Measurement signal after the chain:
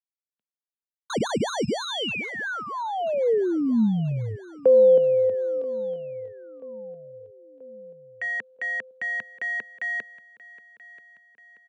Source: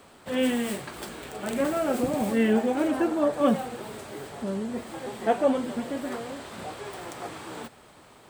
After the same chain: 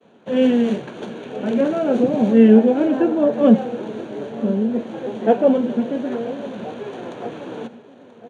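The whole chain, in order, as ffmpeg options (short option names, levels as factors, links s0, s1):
-filter_complex "[0:a]agate=range=0.0224:threshold=0.00447:ratio=3:detection=peak,acrossover=split=400|1700|3300[s0][s1][s2][s3];[s3]acrusher=samples=17:mix=1:aa=0.000001[s4];[s0][s1][s2][s4]amix=inputs=4:normalize=0,highpass=f=120:w=0.5412,highpass=f=120:w=1.3066,equalizer=f=220:t=q:w=4:g=7,equalizer=f=460:t=q:w=4:g=6,equalizer=f=830:t=q:w=4:g=-3,equalizer=f=1200:t=q:w=4:g=-10,equalizer=f=2000:t=q:w=4:g=-9,equalizer=f=5000:t=q:w=4:g=-7,lowpass=f=7600:w=0.5412,lowpass=f=7600:w=1.3066,aecho=1:1:983|1966|2949|3932:0.112|0.0606|0.0327|0.0177,volume=2"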